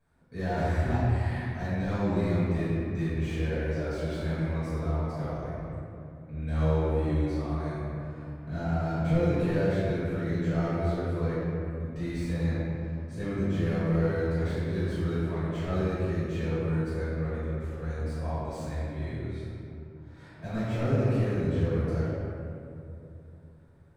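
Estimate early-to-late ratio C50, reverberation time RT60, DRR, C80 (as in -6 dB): -5.5 dB, 2.9 s, -16.0 dB, -3.0 dB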